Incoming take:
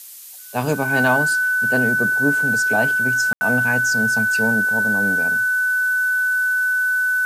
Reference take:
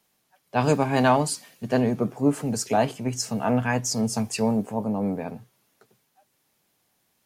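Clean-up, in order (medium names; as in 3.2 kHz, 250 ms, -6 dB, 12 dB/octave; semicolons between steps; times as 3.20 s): band-stop 1.5 kHz, Q 30; room tone fill 3.33–3.41 s; noise print and reduce 30 dB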